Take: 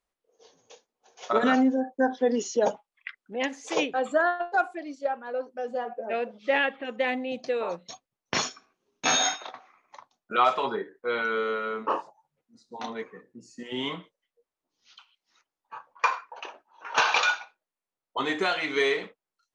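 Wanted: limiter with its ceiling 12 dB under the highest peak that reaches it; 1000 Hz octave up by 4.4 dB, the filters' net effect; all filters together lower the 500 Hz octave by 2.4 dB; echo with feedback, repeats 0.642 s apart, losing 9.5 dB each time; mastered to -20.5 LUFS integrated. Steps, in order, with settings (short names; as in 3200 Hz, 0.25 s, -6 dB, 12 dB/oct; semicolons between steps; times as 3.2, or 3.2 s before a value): bell 500 Hz -5 dB; bell 1000 Hz +7.5 dB; limiter -17.5 dBFS; feedback echo 0.642 s, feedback 33%, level -9.5 dB; gain +9.5 dB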